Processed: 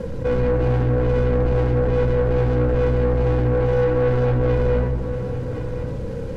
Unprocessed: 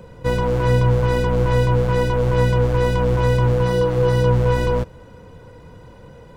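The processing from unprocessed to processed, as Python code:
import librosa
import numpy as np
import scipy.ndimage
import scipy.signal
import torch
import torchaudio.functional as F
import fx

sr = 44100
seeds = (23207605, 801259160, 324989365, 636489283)

p1 = scipy.signal.medfilt(x, 41)
p2 = fx.high_shelf(p1, sr, hz=2300.0, db=-8.5)
p3 = 10.0 ** (-21.0 / 20.0) * np.tanh(p2 / 10.0 ** (-21.0 / 20.0))
p4 = fx.small_body(p3, sr, hz=(430.0, 1500.0), ring_ms=25, db=6)
p5 = fx.quant_dither(p4, sr, seeds[0], bits=10, dither='none')
p6 = fx.air_absorb(p5, sr, metres=59.0)
p7 = p6 + fx.echo_single(p6, sr, ms=1070, db=-18.5, dry=0)
p8 = fx.room_shoebox(p7, sr, seeds[1], volume_m3=2800.0, walls='furnished', distance_m=2.2)
y = fx.env_flatten(p8, sr, amount_pct=50)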